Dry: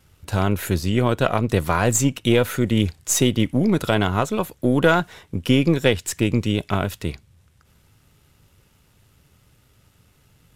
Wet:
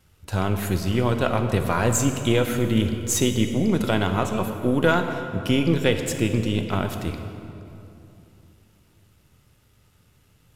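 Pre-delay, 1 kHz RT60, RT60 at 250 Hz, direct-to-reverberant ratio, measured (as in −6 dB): 6 ms, 2.7 s, 3.4 s, 5.5 dB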